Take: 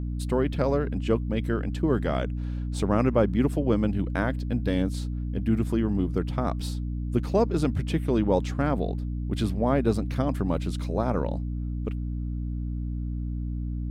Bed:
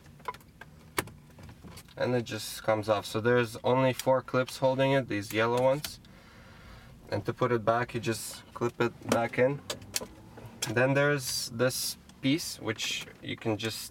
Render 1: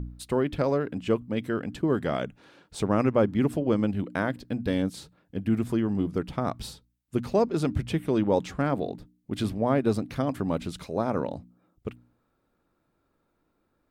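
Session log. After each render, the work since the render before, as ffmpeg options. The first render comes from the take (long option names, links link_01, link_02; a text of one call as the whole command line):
ffmpeg -i in.wav -af "bandreject=frequency=60:width_type=h:width=4,bandreject=frequency=120:width_type=h:width=4,bandreject=frequency=180:width_type=h:width=4,bandreject=frequency=240:width_type=h:width=4,bandreject=frequency=300:width_type=h:width=4" out.wav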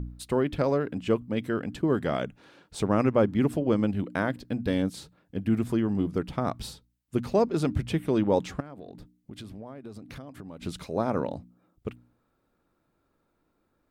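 ffmpeg -i in.wav -filter_complex "[0:a]asettb=1/sr,asplit=3[link_01][link_02][link_03];[link_01]atrim=end=8.604[link_04];[link_02]atrim=start=8.6:end=10.63,asetpts=PTS-STARTPTS,afade=type=in:duration=0.004:curve=qsin,afade=type=out:start_time=2.026:duration=0.004:curve=qsin,acompressor=threshold=-38dB:ratio=10:attack=3.2:release=140:knee=1:detection=peak[link_05];[link_03]atrim=start=10.626[link_06];[link_04][link_05]acrossfade=duration=0.004:curve1=hsin:curve2=qsin[link_07];[link_07][link_06]acrossfade=duration=0.004:curve1=qsin:curve2=hsin" out.wav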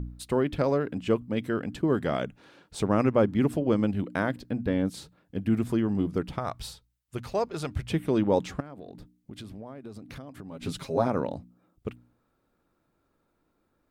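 ffmpeg -i in.wav -filter_complex "[0:a]asettb=1/sr,asplit=3[link_01][link_02][link_03];[link_01]atrim=end=4.434[link_04];[link_02]atrim=start=4.43:end=4.87,asetpts=PTS-STARTPTS,afade=type=in:duration=0.004:curve=qsin,afade=type=out:start_time=0.436:duration=0.004:curve=qsin,acrossover=split=2700[link_05][link_06];[link_06]acompressor=threshold=-59dB:ratio=4:attack=1:release=60[link_07];[link_05][link_07]amix=inputs=2:normalize=0[link_08];[link_03]atrim=start=4.866[link_09];[link_04][link_08]acrossfade=duration=0.004:curve1=hsin:curve2=qsin[link_10];[link_10][link_09]acrossfade=duration=0.004:curve1=qsin:curve2=hsin,asettb=1/sr,asplit=3[link_11][link_12][link_13];[link_11]atrim=end=6.384[link_14];[link_12]atrim=start=6.38:end=7.9,asetpts=PTS-STARTPTS,afade=type=in:duration=0.004:curve=qsin,afade=type=out:start_time=1.516:duration=0.004:curve=qsin,equalizer=frequency=250:width_type=o:width=1.5:gain=-12.5[link_15];[link_13]atrim=start=7.896[link_16];[link_14][link_15]acrossfade=duration=0.004:curve1=hsin:curve2=qsin[link_17];[link_17][link_16]acrossfade=duration=0.004:curve1=qsin:curve2=hsin,asettb=1/sr,asplit=3[link_18][link_19][link_20];[link_18]atrim=end=10.514[link_21];[link_19]atrim=start=10.51:end=11.08,asetpts=PTS-STARTPTS,afade=type=in:duration=0.004:curve=qsin,afade=type=out:start_time=0.566:duration=0.004:curve=qsin,aecho=1:1:7.4:0.88,atrim=end_sample=25137[link_22];[link_20]atrim=start=11.076[link_23];[link_21][link_22]acrossfade=duration=0.004:curve1=hsin:curve2=qsin[link_24];[link_24][link_23]acrossfade=duration=0.004:curve1=qsin:curve2=hsin" out.wav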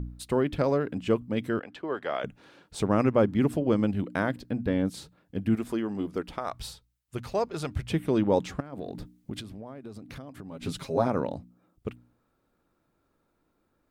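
ffmpeg -i in.wav -filter_complex "[0:a]asettb=1/sr,asplit=3[link_01][link_02][link_03];[link_01]atrim=end=1.594[link_04];[link_02]atrim=start=1.59:end=2.24,asetpts=PTS-STARTPTS,afade=type=in:duration=0.004:curve=qsin,afade=type=out:start_time=0.646:duration=0.004:curve=qsin,acrossover=split=430 4500:gain=0.1 1 0.158[link_05][link_06][link_07];[link_05][link_06][link_07]amix=inputs=3:normalize=0[link_08];[link_03]atrim=start=2.236[link_09];[link_04][link_08]acrossfade=duration=0.004:curve1=hsin:curve2=qsin[link_10];[link_10][link_09]acrossfade=duration=0.004:curve1=qsin:curve2=hsin,asettb=1/sr,asplit=3[link_11][link_12][link_13];[link_11]atrim=end=5.554[link_14];[link_12]atrim=start=5.55:end=6.53,asetpts=PTS-STARTPTS,afade=type=in:duration=0.004:curve=qsin,afade=type=out:start_time=0.976:duration=0.004:curve=qsin,equalizer=frequency=120:width_type=o:width=1.3:gain=-15[link_15];[link_13]atrim=start=6.526[link_16];[link_14][link_15]acrossfade=duration=0.004:curve1=hsin:curve2=qsin[link_17];[link_17][link_16]acrossfade=duration=0.004:curve1=qsin:curve2=hsin,asplit=3[link_18][link_19][link_20];[link_18]afade=type=out:start_time=8.72:duration=0.02[link_21];[link_19]acontrast=83,afade=type=in:start_time=8.72:duration=0.02,afade=type=out:start_time=9.39:duration=0.02[link_22];[link_20]afade=type=in:start_time=9.39:duration=0.02[link_23];[link_21][link_22][link_23]amix=inputs=3:normalize=0" out.wav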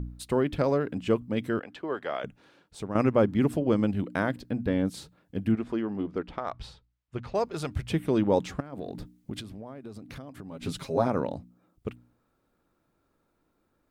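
ffmpeg -i in.wav -filter_complex "[0:a]asplit=3[link_01][link_02][link_03];[link_01]afade=type=out:start_time=5.51:duration=0.02[link_04];[link_02]adynamicsmooth=sensitivity=1.5:basefreq=3600,afade=type=in:start_time=5.51:duration=0.02,afade=type=out:start_time=7.34:duration=0.02[link_05];[link_03]afade=type=in:start_time=7.34:duration=0.02[link_06];[link_04][link_05][link_06]amix=inputs=3:normalize=0,asplit=2[link_07][link_08];[link_07]atrim=end=2.95,asetpts=PTS-STARTPTS,afade=type=out:start_time=1.89:duration=1.06:silence=0.298538[link_09];[link_08]atrim=start=2.95,asetpts=PTS-STARTPTS,afade=type=in:duration=0.004:curve=hsin:silence=0.298538[link_10];[link_09][link_10]concat=n=2:v=0:a=1" out.wav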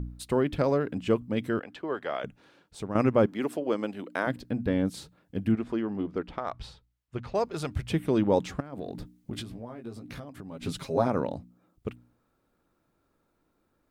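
ffmpeg -i in.wav -filter_complex "[0:a]asettb=1/sr,asplit=3[link_01][link_02][link_03];[link_01]atrim=end=3.264[link_04];[link_02]atrim=start=3.26:end=4.27,asetpts=PTS-STARTPTS,afade=type=in:duration=0.004:curve=qsin,afade=type=out:start_time=1.006:duration=0.004:curve=qsin,highpass=370[link_05];[link_03]atrim=start=4.266[link_06];[link_04][link_05]acrossfade=duration=0.004:curve1=hsin:curve2=qsin[link_07];[link_07][link_06]acrossfade=duration=0.004:curve1=qsin:curve2=hsin,asettb=1/sr,asplit=3[link_08][link_09][link_10];[link_08]atrim=end=9.314[link_11];[link_09]atrim=start=9.31:end=10.25,asetpts=PTS-STARTPTS,afade=type=in:duration=0.004:curve=qsin,afade=type=out:start_time=0.936:duration=0.004:curve=qsin,asplit=2[link_12][link_13];[link_13]adelay=17,volume=-4dB[link_14];[link_12][link_14]amix=inputs=2:normalize=0,atrim=end_sample=41454[link_15];[link_10]atrim=start=10.246[link_16];[link_11][link_15]acrossfade=duration=0.004:curve1=hsin:curve2=qsin[link_17];[link_17][link_16]acrossfade=duration=0.004:curve1=qsin:curve2=hsin" out.wav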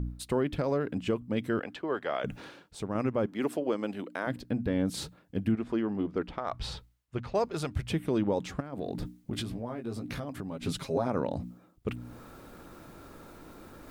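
ffmpeg -i in.wav -af "areverse,acompressor=mode=upward:threshold=-29dB:ratio=2.5,areverse,alimiter=limit=-18.5dB:level=0:latency=1:release=228" out.wav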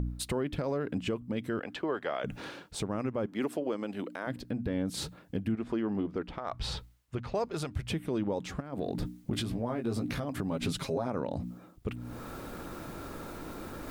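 ffmpeg -i in.wav -filter_complex "[0:a]asplit=2[link_01][link_02];[link_02]acompressor=threshold=-37dB:ratio=6,volume=2.5dB[link_03];[link_01][link_03]amix=inputs=2:normalize=0,alimiter=limit=-22.5dB:level=0:latency=1:release=445" out.wav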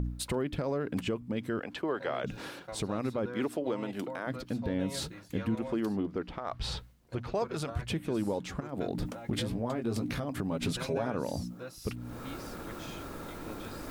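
ffmpeg -i in.wav -i bed.wav -filter_complex "[1:a]volume=-17dB[link_01];[0:a][link_01]amix=inputs=2:normalize=0" out.wav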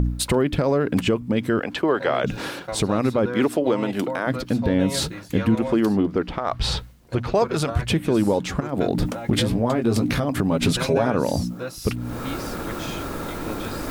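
ffmpeg -i in.wav -af "volume=12dB" out.wav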